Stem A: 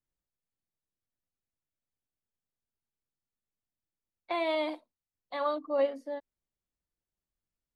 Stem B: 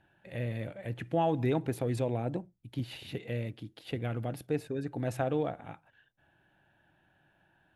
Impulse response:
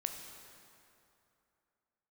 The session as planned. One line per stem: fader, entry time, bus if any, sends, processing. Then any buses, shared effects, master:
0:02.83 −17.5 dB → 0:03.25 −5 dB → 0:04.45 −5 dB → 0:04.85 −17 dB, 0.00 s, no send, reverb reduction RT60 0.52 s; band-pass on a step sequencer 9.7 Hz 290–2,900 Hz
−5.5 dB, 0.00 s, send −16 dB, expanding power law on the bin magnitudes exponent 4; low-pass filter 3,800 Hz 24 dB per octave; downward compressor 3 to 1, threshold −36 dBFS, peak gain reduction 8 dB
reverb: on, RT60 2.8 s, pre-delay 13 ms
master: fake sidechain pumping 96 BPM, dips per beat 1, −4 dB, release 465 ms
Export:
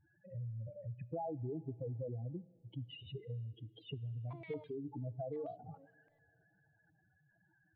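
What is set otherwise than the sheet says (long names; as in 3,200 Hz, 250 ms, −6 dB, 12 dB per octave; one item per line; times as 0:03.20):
stem A −17.5 dB → −24.5 dB
master: missing fake sidechain pumping 96 BPM, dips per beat 1, −4 dB, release 465 ms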